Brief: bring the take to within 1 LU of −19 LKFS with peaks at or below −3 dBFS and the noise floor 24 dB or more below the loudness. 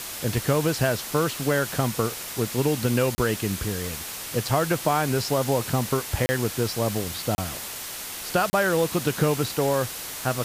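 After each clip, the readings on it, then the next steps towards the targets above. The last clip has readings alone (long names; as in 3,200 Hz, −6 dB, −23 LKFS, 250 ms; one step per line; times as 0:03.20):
number of dropouts 4; longest dropout 30 ms; background noise floor −35 dBFS; target noise floor −49 dBFS; integrated loudness −25.0 LKFS; sample peak −9.0 dBFS; target loudness −19.0 LKFS
→ repair the gap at 0:03.15/0:06.26/0:07.35/0:08.50, 30 ms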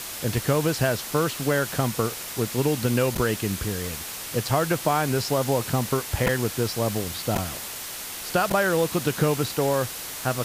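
number of dropouts 0; background noise floor −35 dBFS; target noise floor −49 dBFS
→ broadband denoise 14 dB, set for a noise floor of −35 dBFS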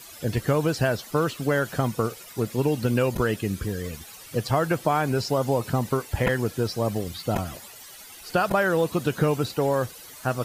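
background noise floor −45 dBFS; target noise floor −50 dBFS
→ broadband denoise 6 dB, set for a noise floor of −45 dBFS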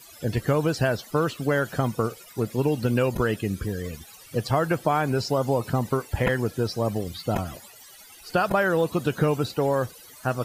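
background noise floor −48 dBFS; target noise floor −50 dBFS
→ broadband denoise 6 dB, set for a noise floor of −48 dBFS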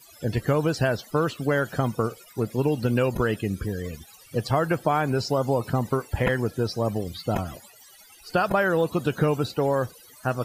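background noise floor −51 dBFS; integrated loudness −25.5 LKFS; sample peak −10.0 dBFS; target loudness −19.0 LKFS
→ level +6.5 dB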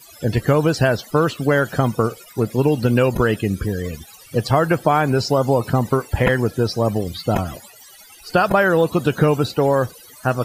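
integrated loudness −19.0 LKFS; sample peak −3.5 dBFS; background noise floor −45 dBFS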